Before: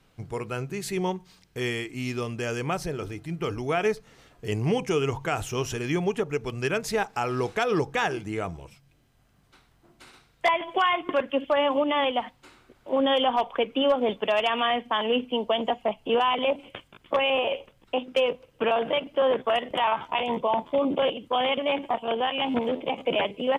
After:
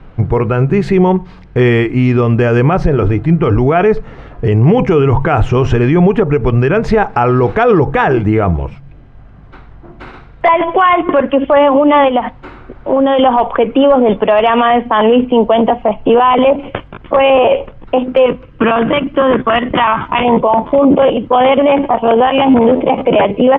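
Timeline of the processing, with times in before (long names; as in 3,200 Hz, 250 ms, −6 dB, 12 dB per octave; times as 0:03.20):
0:12.08–0:13.19: downward compressor, threshold −29 dBFS
0:18.26–0:20.25: flat-topped bell 620 Hz −9.5 dB 1.3 octaves
whole clip: low-pass filter 1,600 Hz 12 dB per octave; low-shelf EQ 76 Hz +11.5 dB; boost into a limiter +22.5 dB; level −1 dB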